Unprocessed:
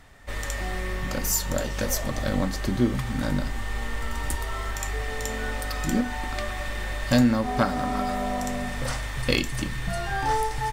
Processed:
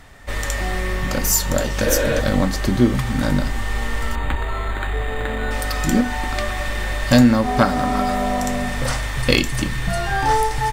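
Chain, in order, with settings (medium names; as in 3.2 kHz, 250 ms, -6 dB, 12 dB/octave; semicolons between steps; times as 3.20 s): 1.88–2.18 s: spectral replace 240–4300 Hz before; 4.15–5.51 s: decimation joined by straight lines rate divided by 8×; trim +7 dB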